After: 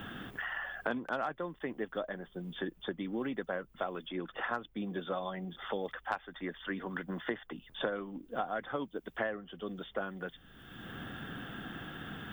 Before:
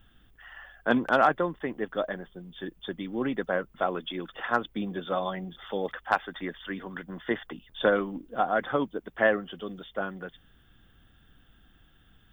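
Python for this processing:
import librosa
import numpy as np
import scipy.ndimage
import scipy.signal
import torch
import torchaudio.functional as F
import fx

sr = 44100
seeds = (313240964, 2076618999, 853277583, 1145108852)

y = fx.band_squash(x, sr, depth_pct=100)
y = y * 10.0 ** (-8.0 / 20.0)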